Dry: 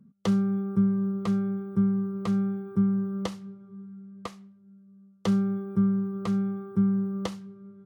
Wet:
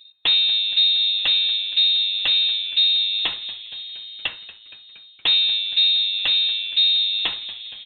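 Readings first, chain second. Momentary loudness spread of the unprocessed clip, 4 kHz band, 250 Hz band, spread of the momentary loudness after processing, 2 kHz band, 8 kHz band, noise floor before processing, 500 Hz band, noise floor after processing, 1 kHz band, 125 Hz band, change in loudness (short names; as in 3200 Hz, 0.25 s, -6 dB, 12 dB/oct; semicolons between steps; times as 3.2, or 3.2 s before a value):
18 LU, +35.5 dB, under -25 dB, 14 LU, +19.5 dB, n/a, -56 dBFS, under -10 dB, -47 dBFS, -1.0 dB, under -25 dB, +10.5 dB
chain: overdrive pedal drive 19 dB, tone 2600 Hz, clips at -14 dBFS; inverted band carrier 3900 Hz; frequency-shifting echo 0.234 s, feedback 65%, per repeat -110 Hz, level -17.5 dB; gain +4.5 dB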